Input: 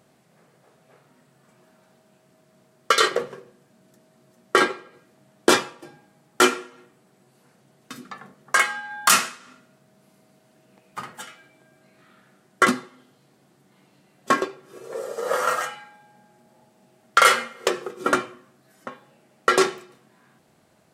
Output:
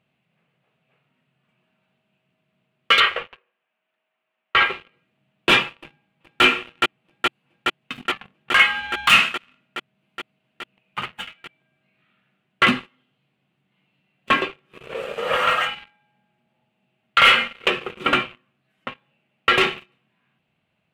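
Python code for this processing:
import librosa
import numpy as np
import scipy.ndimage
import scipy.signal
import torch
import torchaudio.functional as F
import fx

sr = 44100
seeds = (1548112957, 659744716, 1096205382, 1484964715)

y = fx.bandpass_edges(x, sr, low_hz=760.0, high_hz=2600.0, at=(3.0, 4.7))
y = fx.echo_throw(y, sr, start_s=5.78, length_s=0.65, ms=420, feedback_pct=80, wet_db=-5.0)
y = fx.leveller(y, sr, passes=3)
y = fx.curve_eq(y, sr, hz=(170.0, 340.0, 1800.0, 2700.0, 5400.0), db=(0, -8, -2, 10, -16))
y = y * librosa.db_to_amplitude(-3.5)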